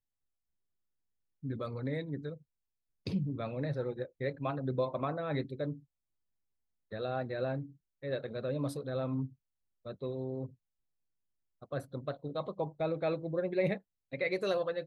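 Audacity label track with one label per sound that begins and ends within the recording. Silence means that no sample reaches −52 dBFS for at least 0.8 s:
1.430000	5.800000	sound
6.920000	10.530000	sound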